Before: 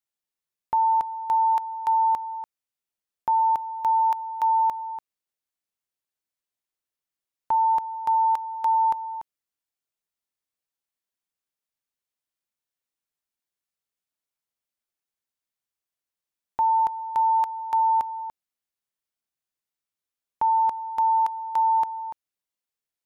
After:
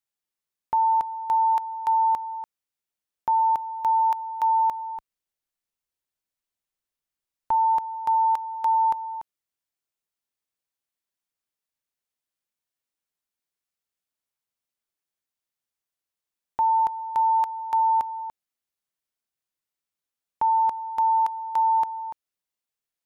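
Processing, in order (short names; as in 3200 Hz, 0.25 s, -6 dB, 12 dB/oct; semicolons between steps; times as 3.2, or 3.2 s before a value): 4.96–7.52 low shelf 61 Hz +11 dB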